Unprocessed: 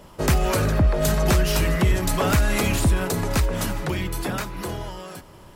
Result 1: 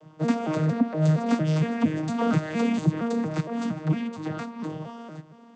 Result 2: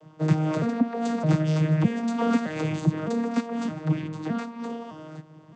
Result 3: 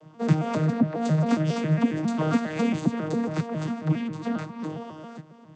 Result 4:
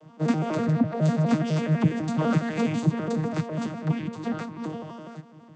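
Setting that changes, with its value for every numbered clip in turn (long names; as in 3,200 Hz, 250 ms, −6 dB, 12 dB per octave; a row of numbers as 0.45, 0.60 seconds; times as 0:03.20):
vocoder with an arpeggio as carrier, a note every: 231, 613, 136, 83 milliseconds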